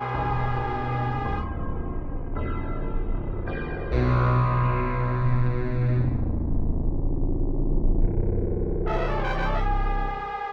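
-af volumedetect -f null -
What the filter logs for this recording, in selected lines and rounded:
mean_volume: -23.6 dB
max_volume: -10.1 dB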